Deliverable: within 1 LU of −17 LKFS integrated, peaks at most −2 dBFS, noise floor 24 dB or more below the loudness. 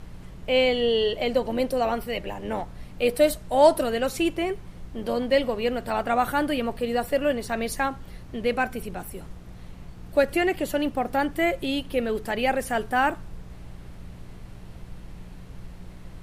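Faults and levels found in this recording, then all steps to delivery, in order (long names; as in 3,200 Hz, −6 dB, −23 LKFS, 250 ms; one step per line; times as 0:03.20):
mains hum 60 Hz; hum harmonics up to 180 Hz; level of the hum −43 dBFS; background noise floor −43 dBFS; target noise floor −49 dBFS; integrated loudness −25.0 LKFS; sample peak −5.0 dBFS; target loudness −17.0 LKFS
→ hum removal 60 Hz, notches 3
noise reduction from a noise print 6 dB
level +8 dB
brickwall limiter −2 dBFS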